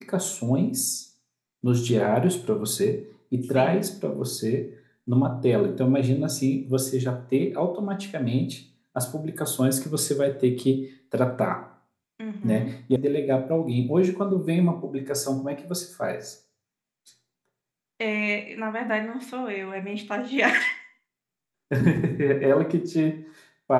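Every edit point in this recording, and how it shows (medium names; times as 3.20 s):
12.96 s: sound stops dead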